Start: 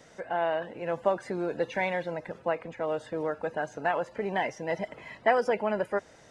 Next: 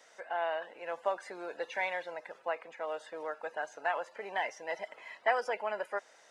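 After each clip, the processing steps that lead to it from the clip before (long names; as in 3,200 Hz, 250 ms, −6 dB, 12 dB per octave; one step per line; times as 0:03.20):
high-pass filter 680 Hz 12 dB per octave
level −2.5 dB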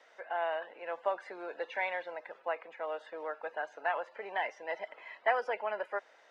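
three-way crossover with the lows and the highs turned down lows −12 dB, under 230 Hz, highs −18 dB, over 4,100 Hz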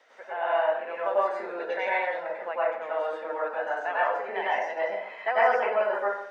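dense smooth reverb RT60 0.69 s, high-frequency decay 0.5×, pre-delay 85 ms, DRR −7.5 dB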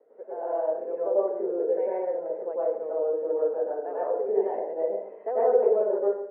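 low-pass with resonance 430 Hz, resonance Q 4.5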